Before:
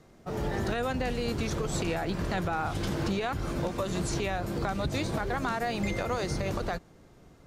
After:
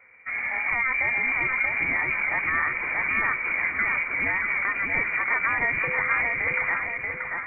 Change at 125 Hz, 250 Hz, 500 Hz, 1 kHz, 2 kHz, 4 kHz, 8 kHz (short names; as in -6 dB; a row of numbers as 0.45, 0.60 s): -12.0 dB, -10.5 dB, -7.0 dB, +3.0 dB, +17.0 dB, under -15 dB, under -40 dB